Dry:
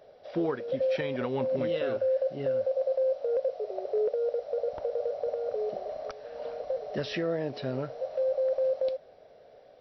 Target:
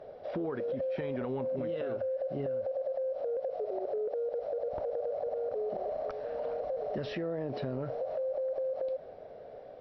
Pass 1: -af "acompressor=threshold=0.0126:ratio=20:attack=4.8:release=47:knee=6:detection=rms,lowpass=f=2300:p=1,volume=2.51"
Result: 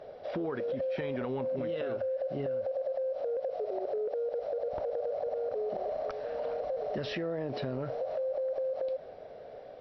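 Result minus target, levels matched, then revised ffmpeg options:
2 kHz band +3.0 dB
-af "acompressor=threshold=0.0126:ratio=20:attack=4.8:release=47:knee=6:detection=rms,lowpass=f=1100:p=1,volume=2.51"

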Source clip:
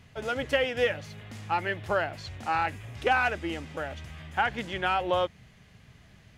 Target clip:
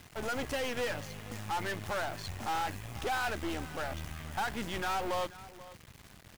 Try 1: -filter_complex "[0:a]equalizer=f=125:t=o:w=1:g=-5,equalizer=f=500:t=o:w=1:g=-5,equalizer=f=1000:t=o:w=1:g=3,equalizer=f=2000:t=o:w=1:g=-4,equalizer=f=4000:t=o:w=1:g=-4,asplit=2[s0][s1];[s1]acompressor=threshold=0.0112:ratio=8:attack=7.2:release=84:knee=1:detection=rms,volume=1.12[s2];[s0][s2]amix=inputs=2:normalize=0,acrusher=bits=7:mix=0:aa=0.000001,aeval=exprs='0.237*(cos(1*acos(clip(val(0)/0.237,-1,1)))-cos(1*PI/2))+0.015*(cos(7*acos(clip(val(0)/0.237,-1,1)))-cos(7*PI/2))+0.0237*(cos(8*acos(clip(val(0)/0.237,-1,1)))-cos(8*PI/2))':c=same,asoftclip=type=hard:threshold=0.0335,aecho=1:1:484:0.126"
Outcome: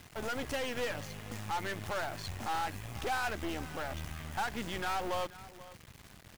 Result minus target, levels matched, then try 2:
compression: peak gain reduction +9.5 dB
-filter_complex "[0:a]equalizer=f=125:t=o:w=1:g=-5,equalizer=f=500:t=o:w=1:g=-5,equalizer=f=1000:t=o:w=1:g=3,equalizer=f=2000:t=o:w=1:g=-4,equalizer=f=4000:t=o:w=1:g=-4,asplit=2[s0][s1];[s1]acompressor=threshold=0.0398:ratio=8:attack=7.2:release=84:knee=1:detection=rms,volume=1.12[s2];[s0][s2]amix=inputs=2:normalize=0,acrusher=bits=7:mix=0:aa=0.000001,aeval=exprs='0.237*(cos(1*acos(clip(val(0)/0.237,-1,1)))-cos(1*PI/2))+0.015*(cos(7*acos(clip(val(0)/0.237,-1,1)))-cos(7*PI/2))+0.0237*(cos(8*acos(clip(val(0)/0.237,-1,1)))-cos(8*PI/2))':c=same,asoftclip=type=hard:threshold=0.0335,aecho=1:1:484:0.126"

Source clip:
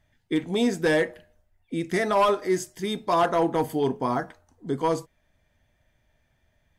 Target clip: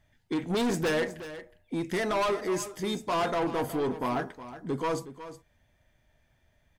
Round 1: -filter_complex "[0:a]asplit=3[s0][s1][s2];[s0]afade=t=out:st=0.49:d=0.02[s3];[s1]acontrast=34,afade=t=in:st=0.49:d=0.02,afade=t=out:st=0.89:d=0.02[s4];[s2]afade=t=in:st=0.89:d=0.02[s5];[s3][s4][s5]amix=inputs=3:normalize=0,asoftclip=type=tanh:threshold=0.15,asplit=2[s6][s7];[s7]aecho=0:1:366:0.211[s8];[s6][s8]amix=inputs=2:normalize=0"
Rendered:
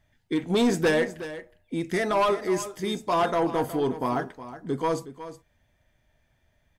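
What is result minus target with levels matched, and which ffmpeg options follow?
saturation: distortion -7 dB
-filter_complex "[0:a]asplit=3[s0][s1][s2];[s0]afade=t=out:st=0.49:d=0.02[s3];[s1]acontrast=34,afade=t=in:st=0.49:d=0.02,afade=t=out:st=0.89:d=0.02[s4];[s2]afade=t=in:st=0.89:d=0.02[s5];[s3][s4][s5]amix=inputs=3:normalize=0,asoftclip=type=tanh:threshold=0.0596,asplit=2[s6][s7];[s7]aecho=0:1:366:0.211[s8];[s6][s8]amix=inputs=2:normalize=0"

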